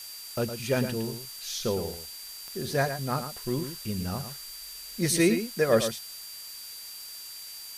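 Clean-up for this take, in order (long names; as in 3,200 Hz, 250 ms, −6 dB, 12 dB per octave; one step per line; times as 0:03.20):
click removal
notch filter 4,700 Hz, Q 30
noise reduction from a noise print 30 dB
echo removal 111 ms −9 dB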